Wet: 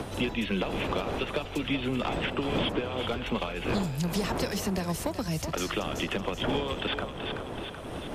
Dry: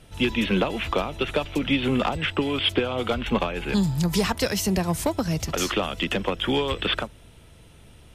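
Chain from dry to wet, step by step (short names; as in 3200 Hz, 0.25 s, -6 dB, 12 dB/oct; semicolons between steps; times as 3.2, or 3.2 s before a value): wind noise 560 Hz -30 dBFS; thinning echo 0.379 s, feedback 40%, level -10 dB; three-band squash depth 70%; gain -7.5 dB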